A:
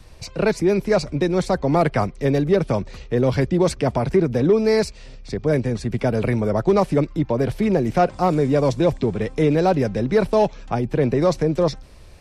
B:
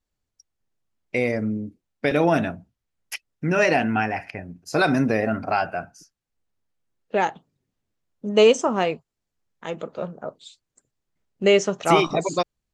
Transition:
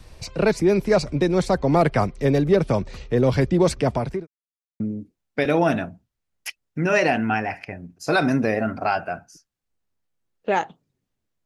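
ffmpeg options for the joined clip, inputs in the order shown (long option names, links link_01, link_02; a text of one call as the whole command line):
ffmpeg -i cue0.wav -i cue1.wav -filter_complex "[0:a]apad=whole_dur=11.45,atrim=end=11.45,asplit=2[link_01][link_02];[link_01]atrim=end=4.27,asetpts=PTS-STARTPTS,afade=type=out:start_time=3.73:duration=0.54:curve=qsin[link_03];[link_02]atrim=start=4.27:end=4.8,asetpts=PTS-STARTPTS,volume=0[link_04];[1:a]atrim=start=1.46:end=8.11,asetpts=PTS-STARTPTS,afade=type=in:duration=0.004:curve=hsin[link_05];[link_03][link_04][link_05]concat=n=3:v=0:a=1" out.wav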